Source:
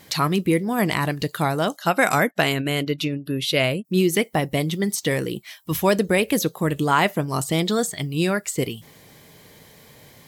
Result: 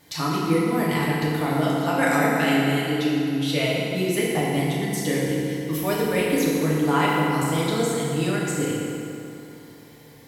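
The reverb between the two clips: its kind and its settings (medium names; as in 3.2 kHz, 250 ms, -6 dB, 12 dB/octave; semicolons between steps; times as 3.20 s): FDN reverb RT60 3 s, high-frequency decay 0.65×, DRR -6.5 dB; trim -9 dB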